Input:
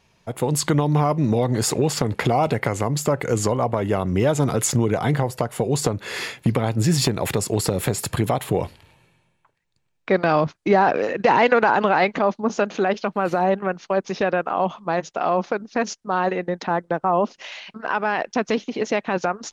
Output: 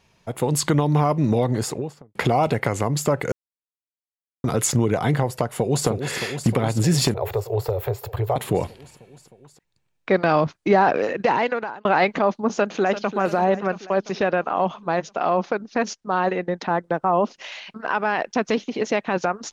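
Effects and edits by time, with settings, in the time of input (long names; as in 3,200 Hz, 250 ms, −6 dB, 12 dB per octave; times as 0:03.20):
0:01.38–0:02.15: fade out and dull
0:03.32–0:04.44: silence
0:05.44–0:05.86: delay throw 310 ms, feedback 80%, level −7.5 dB
0:07.14–0:08.36: drawn EQ curve 120 Hz 0 dB, 190 Hz −29 dB, 270 Hz −26 dB, 410 Hz +1 dB, 880 Hz −1 dB, 1,600 Hz −9 dB, 3,900 Hz −12 dB, 10,000 Hz −23 dB, 15,000 Hz +6 dB
0:11.06–0:11.85: fade out
0:12.51–0:13.15: delay throw 340 ms, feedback 60%, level −11.5 dB
0:13.83–0:16.84: low-pass filter 7,500 Hz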